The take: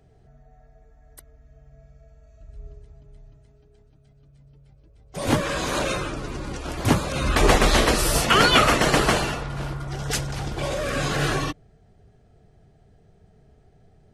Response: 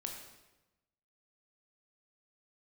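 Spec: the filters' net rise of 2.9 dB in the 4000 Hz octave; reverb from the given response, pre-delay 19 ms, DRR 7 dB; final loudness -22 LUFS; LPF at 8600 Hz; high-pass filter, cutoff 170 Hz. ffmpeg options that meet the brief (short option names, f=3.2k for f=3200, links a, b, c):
-filter_complex "[0:a]highpass=170,lowpass=8.6k,equalizer=f=4k:t=o:g=4,asplit=2[a][b];[1:a]atrim=start_sample=2205,adelay=19[c];[b][c]afir=irnorm=-1:irlink=0,volume=-5.5dB[d];[a][d]amix=inputs=2:normalize=0,volume=-1dB"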